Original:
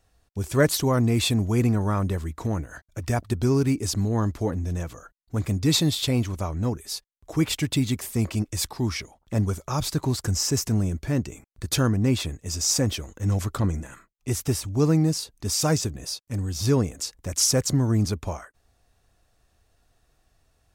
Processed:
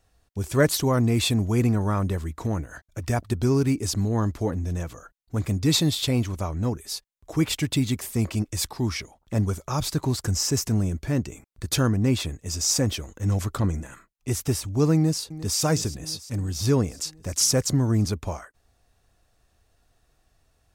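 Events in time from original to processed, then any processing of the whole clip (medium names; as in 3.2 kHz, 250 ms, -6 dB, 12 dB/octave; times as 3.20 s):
14.95–15.59 s: echo throw 350 ms, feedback 70%, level -15.5 dB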